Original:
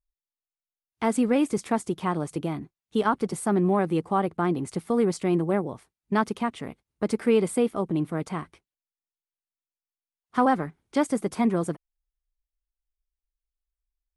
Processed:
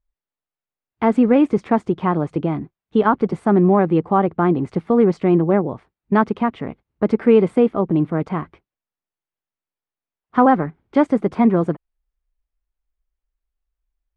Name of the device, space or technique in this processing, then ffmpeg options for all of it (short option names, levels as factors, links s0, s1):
phone in a pocket: -af "lowpass=3100,highshelf=f=2400:g=-9,volume=2.66"